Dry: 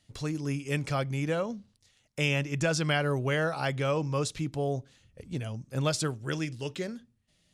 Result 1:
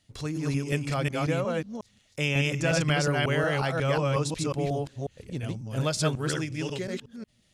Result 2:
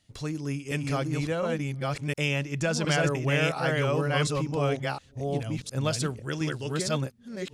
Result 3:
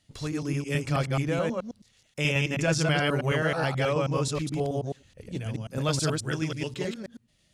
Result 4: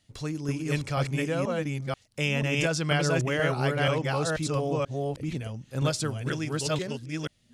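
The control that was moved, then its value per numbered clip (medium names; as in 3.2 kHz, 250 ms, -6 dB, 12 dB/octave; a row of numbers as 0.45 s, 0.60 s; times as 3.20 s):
chunks repeated in reverse, time: 181 ms, 712 ms, 107 ms, 485 ms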